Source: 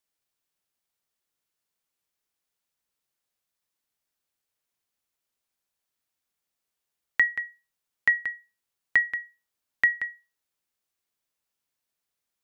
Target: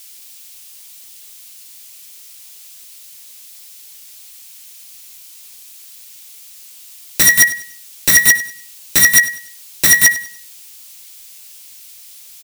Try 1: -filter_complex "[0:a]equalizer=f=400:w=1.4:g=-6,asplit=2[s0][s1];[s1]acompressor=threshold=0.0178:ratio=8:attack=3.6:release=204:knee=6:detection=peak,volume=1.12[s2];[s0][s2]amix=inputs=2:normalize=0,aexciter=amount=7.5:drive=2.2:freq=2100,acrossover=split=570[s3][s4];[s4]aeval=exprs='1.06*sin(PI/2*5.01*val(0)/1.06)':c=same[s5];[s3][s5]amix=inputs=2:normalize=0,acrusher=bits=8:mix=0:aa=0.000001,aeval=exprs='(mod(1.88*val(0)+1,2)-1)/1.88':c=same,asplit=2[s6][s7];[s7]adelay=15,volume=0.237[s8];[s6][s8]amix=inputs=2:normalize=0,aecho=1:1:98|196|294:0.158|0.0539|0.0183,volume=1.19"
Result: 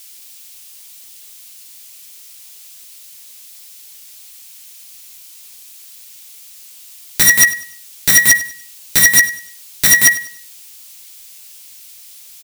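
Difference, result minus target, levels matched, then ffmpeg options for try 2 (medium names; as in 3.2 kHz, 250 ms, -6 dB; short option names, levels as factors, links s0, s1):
compression: peak gain reduction -7.5 dB
-filter_complex "[0:a]equalizer=f=400:w=1.4:g=-6,asplit=2[s0][s1];[s1]acompressor=threshold=0.00668:ratio=8:attack=3.6:release=204:knee=6:detection=peak,volume=1.12[s2];[s0][s2]amix=inputs=2:normalize=0,aexciter=amount=7.5:drive=2.2:freq=2100,acrossover=split=570[s3][s4];[s4]aeval=exprs='1.06*sin(PI/2*5.01*val(0)/1.06)':c=same[s5];[s3][s5]amix=inputs=2:normalize=0,acrusher=bits=8:mix=0:aa=0.000001,aeval=exprs='(mod(1.88*val(0)+1,2)-1)/1.88':c=same,asplit=2[s6][s7];[s7]adelay=15,volume=0.237[s8];[s6][s8]amix=inputs=2:normalize=0,aecho=1:1:98|196|294:0.158|0.0539|0.0183,volume=1.19"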